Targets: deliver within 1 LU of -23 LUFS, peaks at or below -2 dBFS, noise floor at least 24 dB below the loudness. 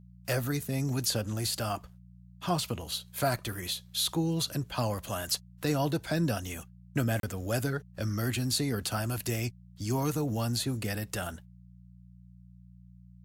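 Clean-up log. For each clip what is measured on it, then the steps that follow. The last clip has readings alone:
dropouts 1; longest dropout 32 ms; hum 60 Hz; harmonics up to 180 Hz; hum level -51 dBFS; loudness -32.0 LUFS; peak -16.0 dBFS; loudness target -23.0 LUFS
-> interpolate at 7.2, 32 ms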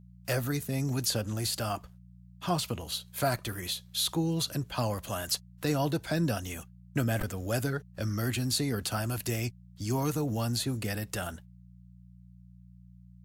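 dropouts 0; hum 60 Hz; harmonics up to 180 Hz; hum level -51 dBFS
-> de-hum 60 Hz, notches 3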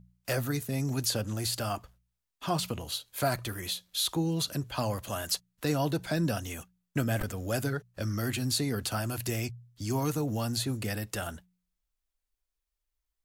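hum none; loudness -32.0 LUFS; peak -16.0 dBFS; loudness target -23.0 LUFS
-> gain +9 dB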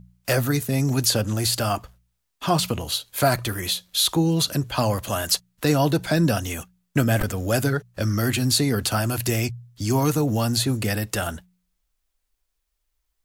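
loudness -23.0 LUFS; peak -7.0 dBFS; noise floor -76 dBFS

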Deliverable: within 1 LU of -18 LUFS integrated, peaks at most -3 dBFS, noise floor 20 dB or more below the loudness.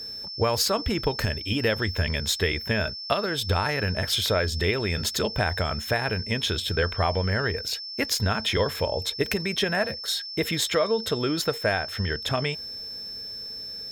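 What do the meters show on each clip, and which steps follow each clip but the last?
steady tone 5300 Hz; tone level -34 dBFS; loudness -26.0 LUFS; peak -7.0 dBFS; loudness target -18.0 LUFS
-> notch 5300 Hz, Q 30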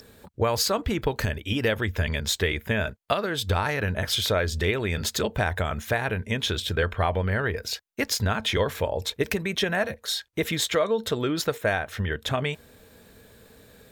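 steady tone none; loudness -26.5 LUFS; peak -7.0 dBFS; loudness target -18.0 LUFS
-> gain +8.5 dB; limiter -3 dBFS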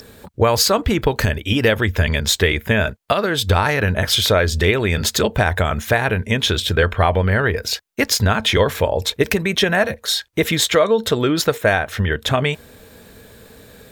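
loudness -18.0 LUFS; peak -3.0 dBFS; noise floor -47 dBFS

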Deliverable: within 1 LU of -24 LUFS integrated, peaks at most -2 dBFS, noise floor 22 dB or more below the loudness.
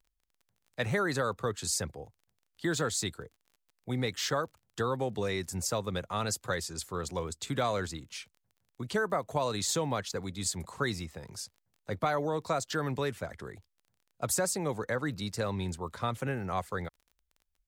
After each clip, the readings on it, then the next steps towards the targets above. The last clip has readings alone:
ticks 20/s; loudness -33.0 LUFS; peak -15.5 dBFS; loudness target -24.0 LUFS
-> de-click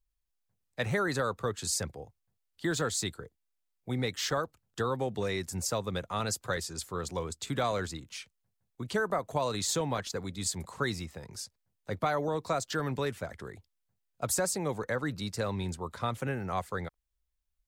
ticks 0.057/s; loudness -33.0 LUFS; peak -15.5 dBFS; loudness target -24.0 LUFS
-> gain +9 dB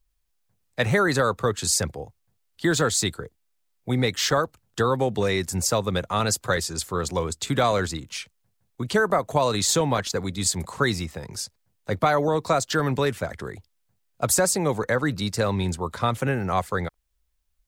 loudness -24.0 LUFS; peak -6.5 dBFS; noise floor -72 dBFS

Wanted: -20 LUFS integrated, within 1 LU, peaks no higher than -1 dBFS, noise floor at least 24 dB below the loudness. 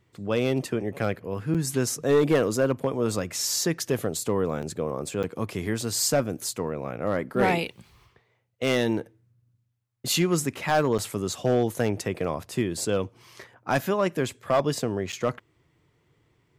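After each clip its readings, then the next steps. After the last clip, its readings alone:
clipped 0.4%; flat tops at -14.5 dBFS; dropouts 5; longest dropout 7.1 ms; loudness -26.5 LUFS; peak -14.5 dBFS; loudness target -20.0 LUFS
-> clip repair -14.5 dBFS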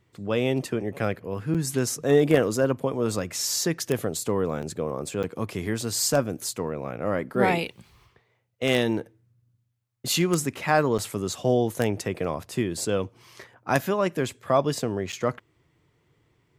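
clipped 0.0%; dropouts 5; longest dropout 7.1 ms
-> interpolate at 1.54/4.62/5.23/10.98/15.12, 7.1 ms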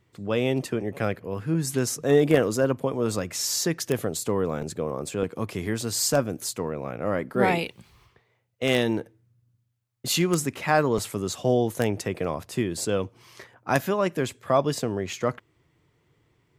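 dropouts 0; loudness -26.0 LUFS; peak -5.5 dBFS; loudness target -20.0 LUFS
-> gain +6 dB; limiter -1 dBFS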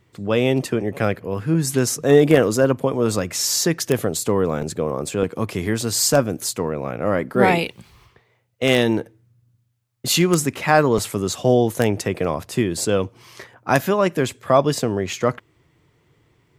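loudness -20.0 LUFS; peak -1.0 dBFS; noise floor -63 dBFS

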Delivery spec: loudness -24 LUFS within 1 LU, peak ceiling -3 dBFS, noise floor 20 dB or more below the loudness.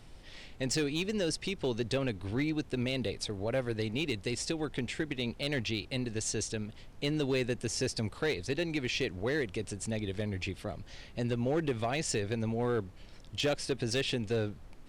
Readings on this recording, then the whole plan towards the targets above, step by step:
clipped 1.0%; flat tops at -24.5 dBFS; noise floor -51 dBFS; noise floor target -54 dBFS; loudness -33.5 LUFS; peak -24.5 dBFS; loudness target -24.0 LUFS
-> clip repair -24.5 dBFS; noise print and reduce 6 dB; gain +9.5 dB

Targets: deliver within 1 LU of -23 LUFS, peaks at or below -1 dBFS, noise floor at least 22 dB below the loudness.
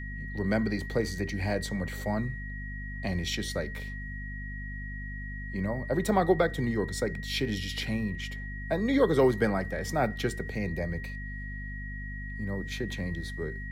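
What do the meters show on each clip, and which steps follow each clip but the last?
hum 50 Hz; harmonics up to 250 Hz; hum level -36 dBFS; steady tone 1900 Hz; tone level -41 dBFS; loudness -31.5 LUFS; peak -12.5 dBFS; loudness target -23.0 LUFS
-> de-hum 50 Hz, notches 5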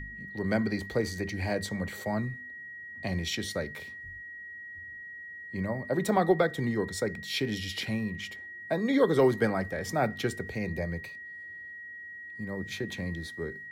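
hum none; steady tone 1900 Hz; tone level -41 dBFS
-> notch 1900 Hz, Q 30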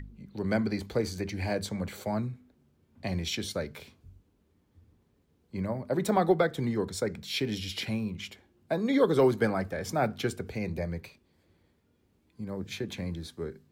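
steady tone none; loudness -31.0 LUFS; peak -12.5 dBFS; loudness target -23.0 LUFS
-> gain +8 dB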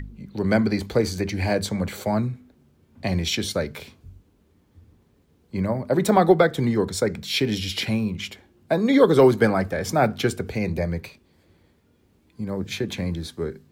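loudness -23.0 LUFS; peak -4.5 dBFS; noise floor -62 dBFS

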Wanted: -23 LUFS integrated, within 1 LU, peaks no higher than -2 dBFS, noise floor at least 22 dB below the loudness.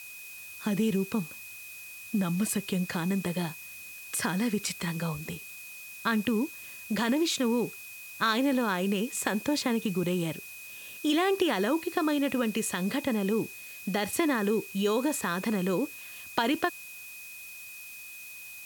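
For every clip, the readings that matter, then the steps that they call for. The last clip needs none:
steady tone 2500 Hz; tone level -44 dBFS; noise floor -45 dBFS; noise floor target -52 dBFS; loudness -29.5 LUFS; peak -11.0 dBFS; loudness target -23.0 LUFS
-> notch 2500 Hz, Q 30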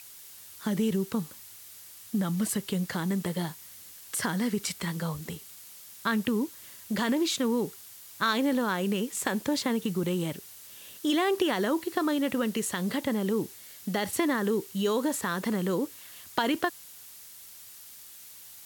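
steady tone none; noise floor -48 dBFS; noise floor target -52 dBFS
-> noise print and reduce 6 dB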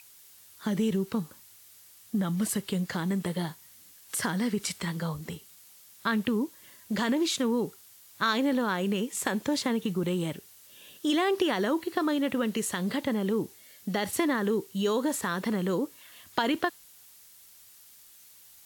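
noise floor -54 dBFS; loudness -29.5 LUFS; peak -11.5 dBFS; loudness target -23.0 LUFS
-> gain +6.5 dB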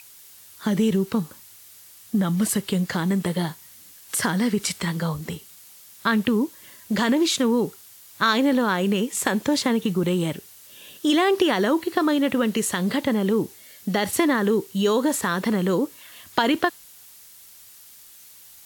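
loudness -23.0 LUFS; peak -5.0 dBFS; noise floor -48 dBFS

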